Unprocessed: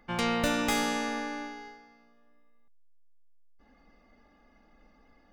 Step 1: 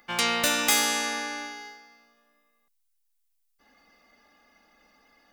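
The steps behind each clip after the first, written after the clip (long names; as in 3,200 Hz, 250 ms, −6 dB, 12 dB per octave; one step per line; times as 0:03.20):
spectral tilt +3.5 dB per octave
level +2.5 dB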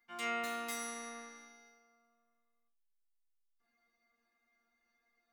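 resonators tuned to a chord A#3 fifth, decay 0.25 s
level −5 dB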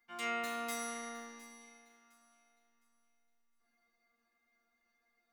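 delay that swaps between a low-pass and a high-pass 355 ms, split 1,500 Hz, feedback 54%, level −12 dB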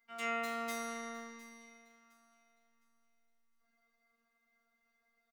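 phases set to zero 231 Hz
single-tap delay 255 ms −23.5 dB
level +1 dB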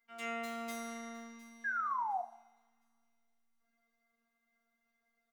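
sound drawn into the spectrogram fall, 0:01.64–0:02.22, 690–1,700 Hz −33 dBFS
coupled-rooms reverb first 0.66 s, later 2.2 s, from −27 dB, DRR 8 dB
level −3 dB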